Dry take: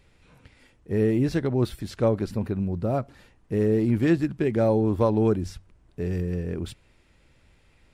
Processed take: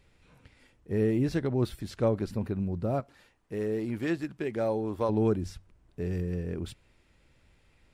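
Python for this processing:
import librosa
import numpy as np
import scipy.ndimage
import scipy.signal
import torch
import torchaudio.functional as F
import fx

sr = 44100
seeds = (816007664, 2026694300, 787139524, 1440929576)

y = fx.low_shelf(x, sr, hz=300.0, db=-10.5, at=(3.0, 5.09))
y = y * librosa.db_to_amplitude(-4.0)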